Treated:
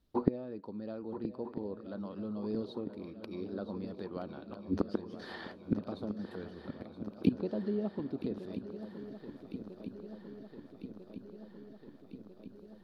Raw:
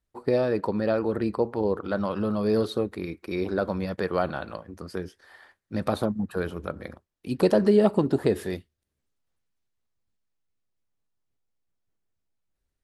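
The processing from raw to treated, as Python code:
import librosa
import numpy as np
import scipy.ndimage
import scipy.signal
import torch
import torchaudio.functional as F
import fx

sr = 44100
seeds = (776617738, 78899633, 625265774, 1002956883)

p1 = fx.gate_flip(x, sr, shuts_db=-28.0, range_db=-28)
p2 = fx.env_lowpass_down(p1, sr, base_hz=2800.0, full_db=-42.5)
p3 = fx.rider(p2, sr, range_db=10, speed_s=2.0)
p4 = p2 + (p3 * 10.0 ** (0.0 / 20.0))
p5 = fx.graphic_eq_10(p4, sr, hz=(250, 2000, 4000, 8000), db=(9, -7, 7, -11))
p6 = fx.echo_swing(p5, sr, ms=1297, ratio=3, feedback_pct=69, wet_db=-12.0)
y = p6 * 10.0 ** (2.0 / 20.0)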